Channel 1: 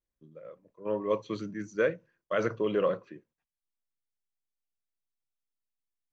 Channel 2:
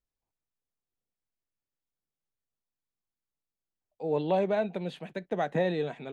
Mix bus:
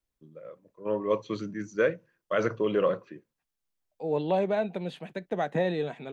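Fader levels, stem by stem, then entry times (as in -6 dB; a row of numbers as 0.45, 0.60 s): +2.0, +0.5 dB; 0.00, 0.00 s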